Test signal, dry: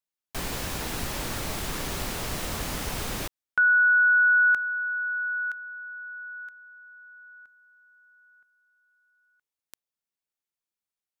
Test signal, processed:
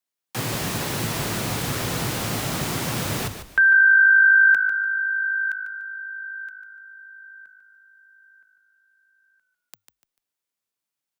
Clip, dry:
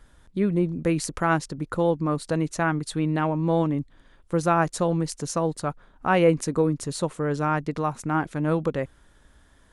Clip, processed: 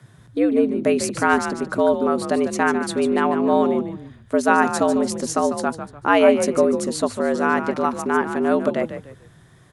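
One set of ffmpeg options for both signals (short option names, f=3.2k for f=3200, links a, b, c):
-filter_complex "[0:a]afreqshift=98,asplit=4[a][b][c][d];[b]adelay=147,afreqshift=-52,volume=-9.5dB[e];[c]adelay=294,afreqshift=-104,volume=-19.7dB[f];[d]adelay=441,afreqshift=-156,volume=-29.8dB[g];[a][e][f][g]amix=inputs=4:normalize=0,volume=4.5dB"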